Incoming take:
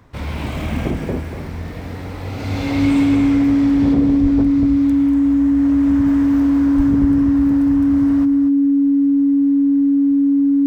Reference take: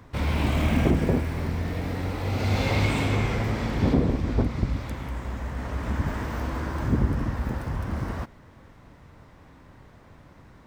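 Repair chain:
notch filter 280 Hz, Q 30
high-pass at the plosives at 0:04.22/0:06.76
echo removal 239 ms −9.5 dB

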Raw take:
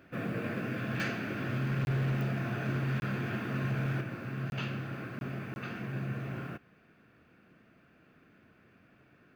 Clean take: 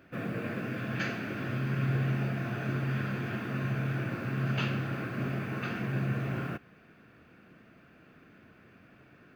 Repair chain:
clipped peaks rebuilt −26.5 dBFS
click removal
repair the gap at 0:01.85/0:03.00/0:04.50/0:05.19/0:05.54, 21 ms
level correction +5 dB, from 0:04.01

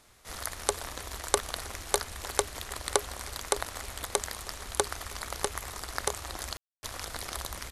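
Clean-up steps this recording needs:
ambience match 0:06.57–0:06.83
echo removal 317 ms −23 dB

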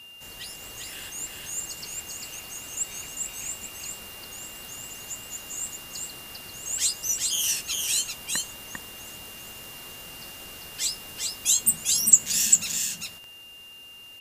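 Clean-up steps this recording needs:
click removal
notch filter 2,800 Hz, Q 30
echo removal 397 ms −3 dB

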